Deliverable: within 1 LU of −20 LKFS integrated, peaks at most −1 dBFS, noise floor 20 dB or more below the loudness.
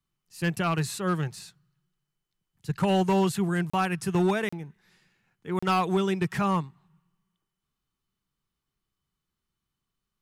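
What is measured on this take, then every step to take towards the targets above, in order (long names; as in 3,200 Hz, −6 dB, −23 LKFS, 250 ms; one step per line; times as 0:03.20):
share of clipped samples 0.8%; peaks flattened at −18.0 dBFS; number of dropouts 3; longest dropout 35 ms; integrated loudness −27.0 LKFS; sample peak −18.0 dBFS; target loudness −20.0 LKFS
→ clipped peaks rebuilt −18 dBFS
repair the gap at 0:03.70/0:04.49/0:05.59, 35 ms
level +7 dB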